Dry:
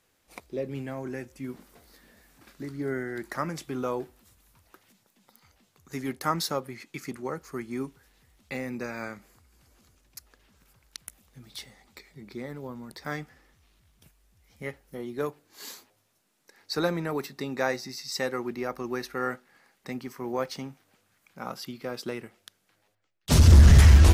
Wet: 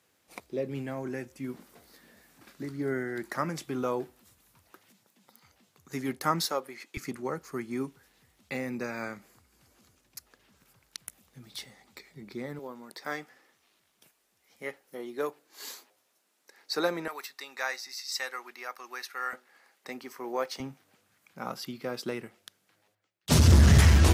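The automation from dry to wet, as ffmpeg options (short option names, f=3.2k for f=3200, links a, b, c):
-af "asetnsamples=n=441:p=0,asendcmd='6.45 highpass f 370;6.97 highpass f 99;12.59 highpass f 330;17.08 highpass f 1100;19.33 highpass f 380;20.6 highpass f 90',highpass=98"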